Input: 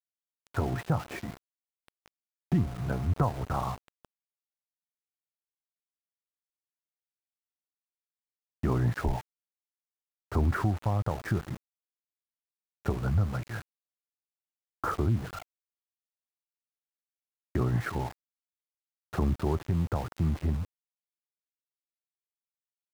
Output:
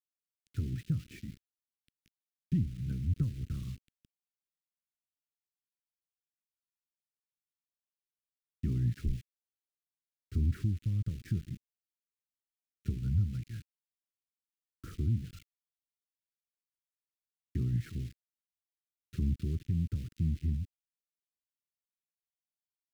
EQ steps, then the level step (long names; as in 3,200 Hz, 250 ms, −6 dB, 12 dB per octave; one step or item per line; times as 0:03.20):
Chebyshev band-stop filter 240–2,700 Hz, order 2
low-shelf EQ 220 Hz +7 dB
−8.0 dB